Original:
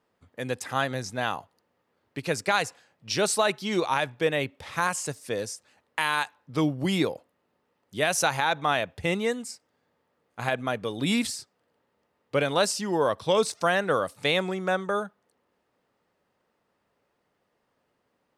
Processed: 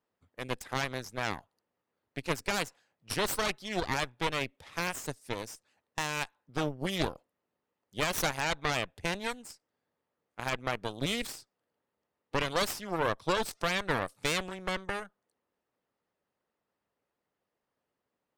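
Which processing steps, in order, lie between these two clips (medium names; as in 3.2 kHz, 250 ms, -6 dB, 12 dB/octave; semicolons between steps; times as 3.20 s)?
Chebyshev shaper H 6 -7 dB, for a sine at -9 dBFS; harmonic-percussive split harmonic -5 dB; trim -9 dB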